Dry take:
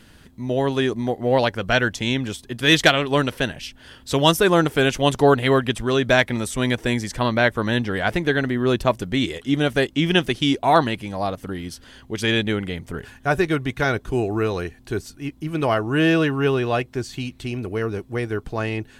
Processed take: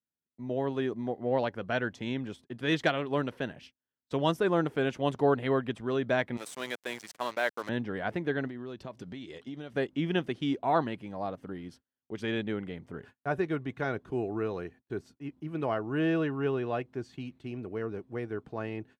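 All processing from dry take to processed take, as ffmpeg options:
ffmpeg -i in.wav -filter_complex "[0:a]asettb=1/sr,asplit=3[link_01][link_02][link_03];[link_01]atrim=end=6.374[link_04];[link_02]atrim=start=6.37:end=7.69,asetpts=PTS-STARTPTS,afade=type=in:duration=0.004:curve=qsin,afade=type=out:start_time=1.316:duration=0.004:curve=qsin,highpass=480,acrusher=bits=4:mix=0:aa=0.5,equalizer=frequency=13000:width_type=o:width=2.3:gain=12[link_05];[link_03]atrim=start=7.686[link_06];[link_04][link_05]acrossfade=duration=0.004:curve1=hsin:curve2=qsin[link_07];[link_07][link_06]acrossfade=duration=0.004:curve1=qsin:curve2=hsin,asettb=1/sr,asplit=3[link_08][link_09][link_10];[link_08]atrim=end=8.474[link_11];[link_09]atrim=start=8.47:end=9.73,asetpts=PTS-STARTPTS,afade=type=in:duration=0.004:curve=qsin,afade=type=out:start_time=1.256:duration=0.004:curve=qsin,equalizer=frequency=4800:width=0.94:gain=8.5,acompressor=threshold=-26dB:ratio=8:attack=3.2:release=140:knee=1:detection=peak[link_12];[link_10]atrim=start=9.726[link_13];[link_11][link_12]acrossfade=duration=0.004:curve1=hsin:curve2=qsin[link_14];[link_14][link_13]acrossfade=duration=0.004:curve1=qsin:curve2=hsin,lowpass=frequency=1300:poles=1,agate=range=-39dB:threshold=-40dB:ratio=16:detection=peak,highpass=130,volume=-9dB" out.wav

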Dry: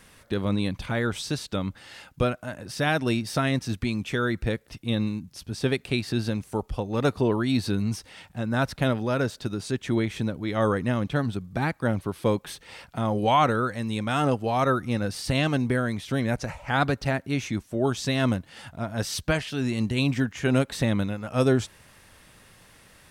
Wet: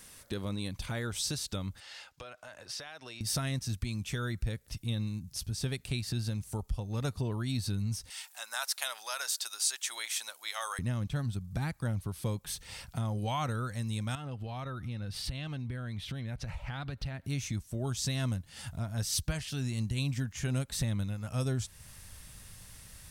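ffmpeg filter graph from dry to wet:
ffmpeg -i in.wav -filter_complex "[0:a]asettb=1/sr,asplit=3[link_01][link_02][link_03];[link_01]atrim=end=1.804[link_04];[link_02]atrim=start=1.8:end=3.21,asetpts=PTS-STARTPTS,afade=type=in:duration=0.004:curve=qsin,afade=type=out:start_time=1.406:duration=0.004:curve=qsin,acrossover=split=420 5900:gain=0.1 1 0.178[link_05][link_06][link_07];[link_05][link_06][link_07]amix=inputs=3:normalize=0,acompressor=threshold=-38dB:ratio=6:attack=3.2:release=140:knee=1:detection=peak[link_08];[link_03]atrim=start=3.206[link_09];[link_04][link_08]acrossfade=duration=0.004:curve1=hsin:curve2=qsin[link_10];[link_10][link_09]acrossfade=duration=0.004:curve1=qsin:curve2=hsin,asettb=1/sr,asplit=3[link_11][link_12][link_13];[link_11]atrim=end=8.104[link_14];[link_12]atrim=start=8.1:end=10.79,asetpts=PTS-STARTPTS,afade=type=in:duration=0.004:curve=qsin,afade=type=out:start_time=2.686:duration=0.004:curve=qsin,highpass=frequency=780:width=0.5412,highpass=frequency=780:width=1.3066,highshelf=frequency=4000:gain=9.5[link_15];[link_13]atrim=start=10.786[link_16];[link_14][link_15]acrossfade=duration=0.004:curve1=hsin:curve2=qsin[link_17];[link_17][link_16]acrossfade=duration=0.004:curve1=qsin:curve2=hsin,asettb=1/sr,asplit=3[link_18][link_19][link_20];[link_18]atrim=end=14.154[link_21];[link_19]atrim=start=14.15:end=17.26,asetpts=PTS-STARTPTS,afade=type=in:duration=0.004:curve=qsin,afade=type=out:start_time=3.106:duration=0.004:curve=qsin,highshelf=frequency=4800:width_type=q:width=1.5:gain=-10,acompressor=threshold=-36dB:ratio=2.5:attack=3.2:release=140:knee=1:detection=peak[link_22];[link_20]atrim=start=17.256[link_23];[link_21][link_22]acrossfade=duration=0.004:curve1=hsin:curve2=qsin[link_24];[link_24][link_23]acrossfade=duration=0.004:curve1=qsin:curve2=hsin,asubboost=boost=5:cutoff=140,acompressor=threshold=-31dB:ratio=2,bass=frequency=250:gain=0,treble=frequency=4000:gain=12,volume=-5dB" out.wav

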